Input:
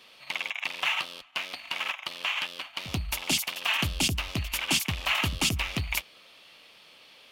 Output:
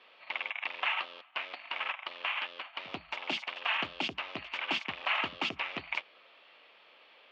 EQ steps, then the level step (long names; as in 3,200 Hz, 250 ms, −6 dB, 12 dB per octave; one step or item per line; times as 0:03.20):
high-pass filter 420 Hz 12 dB per octave
low-pass filter 2,800 Hz 12 dB per octave
high-frequency loss of the air 150 metres
0.0 dB